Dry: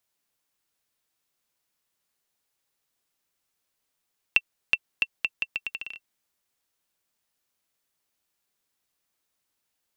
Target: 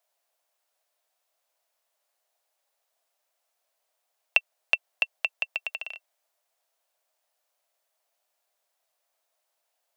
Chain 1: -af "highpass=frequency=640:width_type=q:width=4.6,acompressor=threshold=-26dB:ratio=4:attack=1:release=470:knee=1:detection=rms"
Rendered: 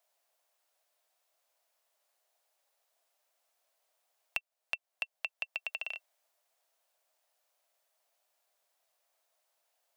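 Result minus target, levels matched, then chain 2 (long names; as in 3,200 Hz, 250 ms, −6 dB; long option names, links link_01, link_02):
downward compressor: peak gain reduction +14.5 dB
-af "highpass=frequency=640:width_type=q:width=4.6"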